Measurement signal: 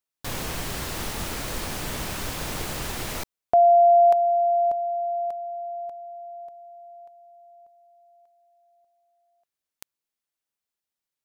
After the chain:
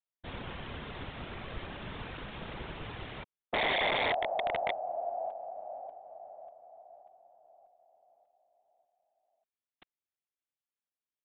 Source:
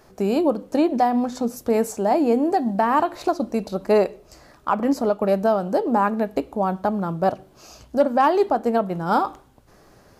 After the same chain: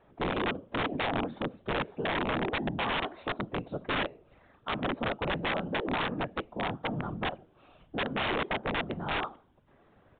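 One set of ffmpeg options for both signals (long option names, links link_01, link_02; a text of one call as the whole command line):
ffmpeg -i in.wav -af "afftfilt=real='hypot(re,im)*cos(2*PI*random(0))':imag='hypot(re,im)*sin(2*PI*random(1))':win_size=512:overlap=0.75,aeval=exprs='(mod(10*val(0)+1,2)-1)/10':channel_layout=same,aresample=8000,aresample=44100,volume=-3.5dB" out.wav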